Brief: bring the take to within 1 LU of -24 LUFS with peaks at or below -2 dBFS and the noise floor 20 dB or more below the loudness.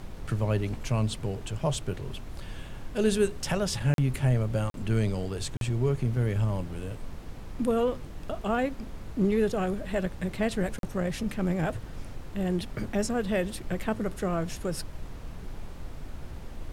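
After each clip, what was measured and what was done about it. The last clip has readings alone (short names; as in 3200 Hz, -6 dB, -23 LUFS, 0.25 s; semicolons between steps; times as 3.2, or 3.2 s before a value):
dropouts 4; longest dropout 42 ms; noise floor -42 dBFS; noise floor target -50 dBFS; loudness -29.5 LUFS; peak -13.5 dBFS; loudness target -24.0 LUFS
-> interpolate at 3.94/4.7/5.57/10.79, 42 ms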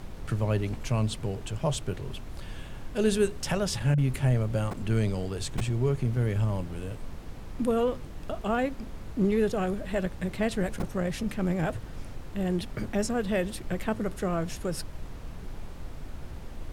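dropouts 0; noise floor -41 dBFS; noise floor target -50 dBFS
-> noise print and reduce 9 dB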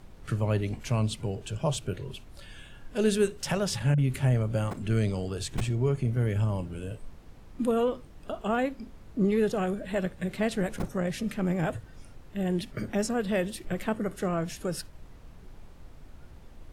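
noise floor -50 dBFS; loudness -29.5 LUFS; peak -13.5 dBFS; loudness target -24.0 LUFS
-> gain +5.5 dB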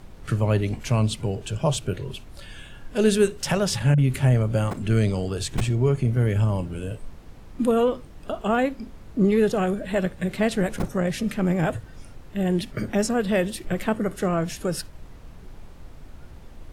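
loudness -24.0 LUFS; peak -8.0 dBFS; noise floor -44 dBFS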